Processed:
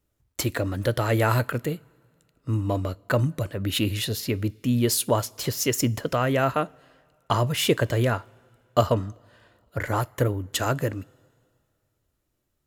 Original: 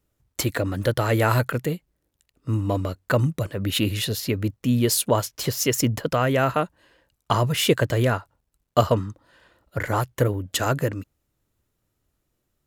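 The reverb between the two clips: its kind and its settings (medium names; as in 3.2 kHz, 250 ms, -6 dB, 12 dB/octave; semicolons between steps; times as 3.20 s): two-slope reverb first 0.23 s, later 2.2 s, from -20 dB, DRR 17 dB; trim -2 dB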